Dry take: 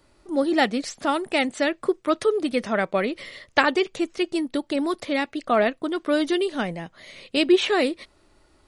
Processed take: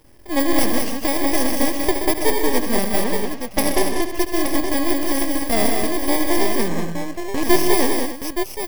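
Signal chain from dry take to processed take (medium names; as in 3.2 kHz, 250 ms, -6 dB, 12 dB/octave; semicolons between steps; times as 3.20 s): bit-reversed sample order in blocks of 32 samples; 3.04–4.02 s: level-controlled noise filter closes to 2.2 kHz, open at -15 dBFS; treble shelf 4.2 kHz -6.5 dB; in parallel at +2.5 dB: compression, threshold -34 dBFS, peak gain reduction 19 dB; on the sum: half-wave rectifier; on a send: multi-tap echo 72/127/155/191/290/872 ms -12/-10.5/-12.5/-5/-12.5/-7 dB; 6.68–7.43 s: on the sum: careless resampling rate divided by 6×, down filtered, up hold; trim +4.5 dB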